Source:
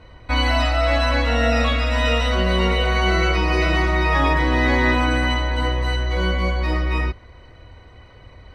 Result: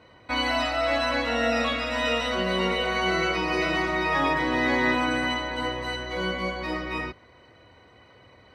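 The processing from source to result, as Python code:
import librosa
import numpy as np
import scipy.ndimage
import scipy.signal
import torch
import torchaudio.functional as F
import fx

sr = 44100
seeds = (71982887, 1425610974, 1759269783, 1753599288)

y = scipy.signal.sosfilt(scipy.signal.butter(2, 160.0, 'highpass', fs=sr, output='sos'), x)
y = y * 10.0 ** (-4.0 / 20.0)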